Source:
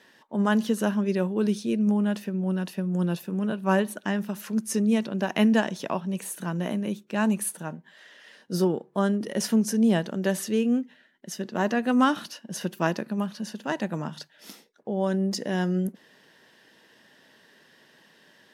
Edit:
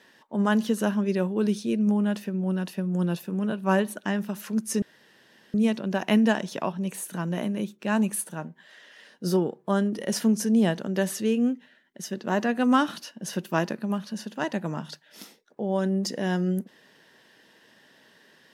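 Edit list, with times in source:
0:04.82: splice in room tone 0.72 s

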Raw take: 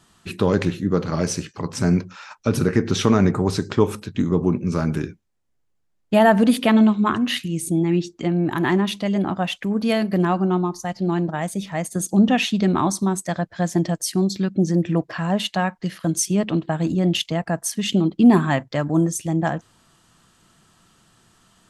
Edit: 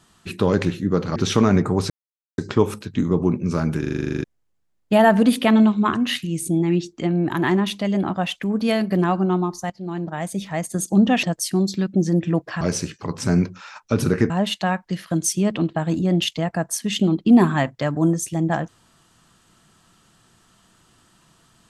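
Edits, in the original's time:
0:01.16–0:02.85: move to 0:15.23
0:03.59: splice in silence 0.48 s
0:05.01: stutter in place 0.04 s, 11 plays
0:10.91–0:11.59: fade in linear, from −14.5 dB
0:12.44–0:13.85: remove

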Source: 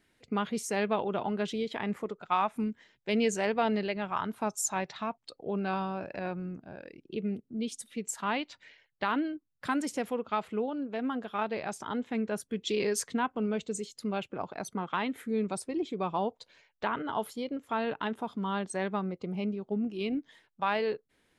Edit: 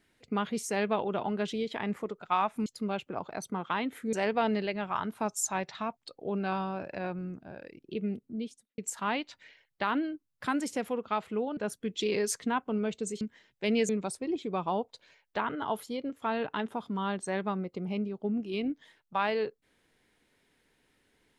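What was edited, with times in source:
0:02.66–0:03.34: swap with 0:13.89–0:15.36
0:07.45–0:07.99: fade out and dull
0:10.78–0:12.25: remove

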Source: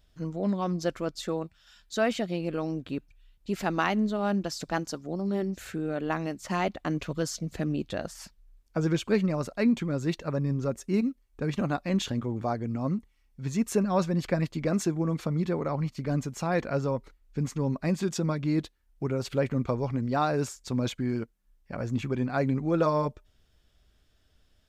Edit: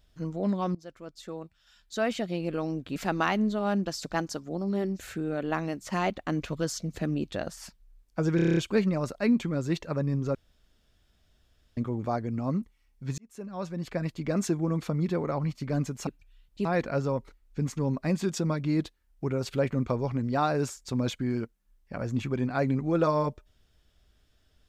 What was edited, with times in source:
0:00.75–0:02.45: fade in, from −20.5 dB
0:02.96–0:03.54: move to 0:16.44
0:08.94: stutter 0.03 s, 8 plays
0:10.72–0:12.14: fill with room tone
0:13.55–0:14.87: fade in

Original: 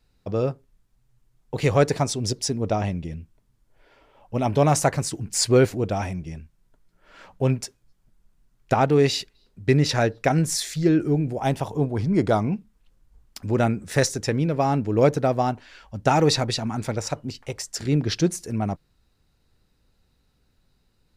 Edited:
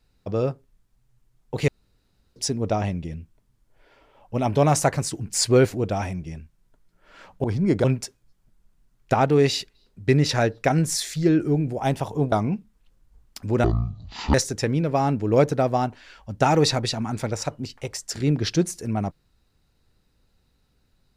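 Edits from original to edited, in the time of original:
0:01.68–0:02.36: fill with room tone
0:11.92–0:12.32: move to 0:07.44
0:13.64–0:13.99: play speed 50%

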